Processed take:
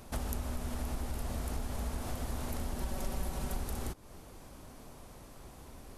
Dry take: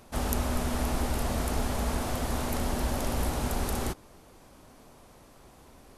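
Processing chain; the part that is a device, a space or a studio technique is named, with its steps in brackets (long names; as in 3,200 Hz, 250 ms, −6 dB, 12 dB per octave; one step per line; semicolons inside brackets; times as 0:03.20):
ASMR close-microphone chain (low-shelf EQ 150 Hz +6.5 dB; downward compressor 4 to 1, threshold −35 dBFS, peak gain reduction 14.5 dB; high-shelf EQ 7,500 Hz +4 dB)
0:02.81–0:03.57: comb filter 5.3 ms, depth 55%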